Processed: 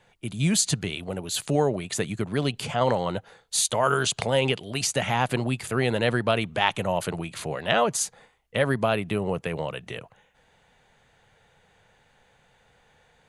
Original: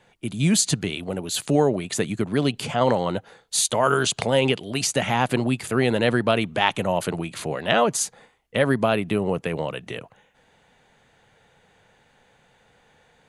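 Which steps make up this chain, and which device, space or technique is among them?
low shelf boost with a cut just above (low-shelf EQ 77 Hz +5.5 dB; parametric band 270 Hz −4.5 dB 1.1 octaves)
level −2 dB

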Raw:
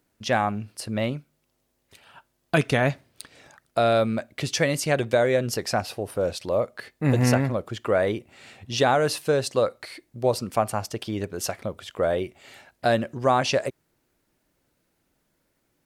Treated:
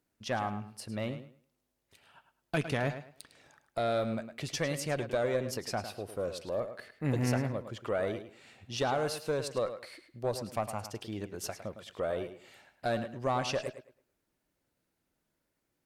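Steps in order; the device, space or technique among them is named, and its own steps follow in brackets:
rockabilly slapback (tube saturation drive 11 dB, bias 0.35; tape delay 106 ms, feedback 25%, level −9.5 dB, low-pass 5,200 Hz)
level −8.5 dB

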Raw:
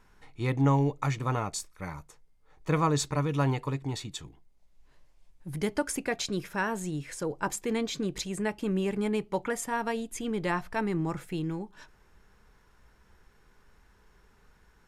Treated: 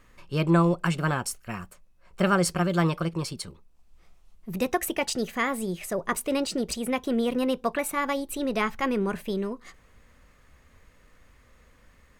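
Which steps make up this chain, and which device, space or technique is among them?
nightcore (speed change +22%)
level +3.5 dB

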